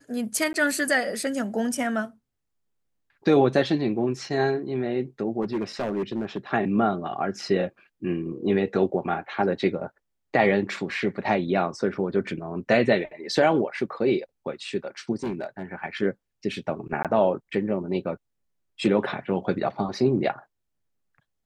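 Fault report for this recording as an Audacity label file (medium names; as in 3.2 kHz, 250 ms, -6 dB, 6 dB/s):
0.530000	0.540000	dropout 11 ms
5.420000	6.380000	clipped -22.5 dBFS
15.230000	15.620000	clipped -25 dBFS
17.030000	17.050000	dropout 17 ms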